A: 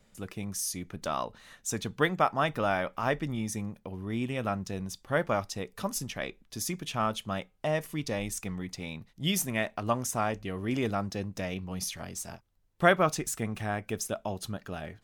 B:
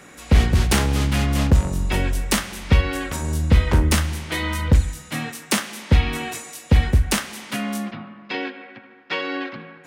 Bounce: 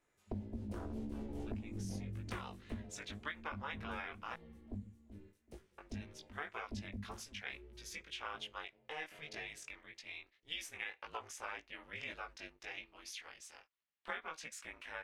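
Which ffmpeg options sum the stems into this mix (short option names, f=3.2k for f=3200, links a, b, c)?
-filter_complex "[0:a]bandpass=f=2.4k:t=q:w=1.3:csg=0,adelay=1250,volume=2dB,asplit=3[a][b][c];[a]atrim=end=4.34,asetpts=PTS-STARTPTS,afade=t=out:st=4.336:d=0.004:c=hsin[d];[b]atrim=start=4.34:end=5.78,asetpts=PTS-STARTPTS,volume=0[e];[c]atrim=start=5.78,asetpts=PTS-STARTPTS,afade=t=in:d=0.004:c=hsin[f];[d][e][f]concat=n=3:v=0:a=1[g];[1:a]afwtdn=0.0708,volume=-12dB,afade=t=out:st=2.41:d=0.54:silence=0.266073,asplit=2[h][i];[i]volume=-13dB,aecho=0:1:381|762|1143|1524:1|0.25|0.0625|0.0156[j];[g][h][j]amix=inputs=3:normalize=0,aeval=exprs='val(0)*sin(2*PI*150*n/s)':c=same,flanger=delay=17.5:depth=3.2:speed=1.8,acompressor=threshold=-38dB:ratio=16"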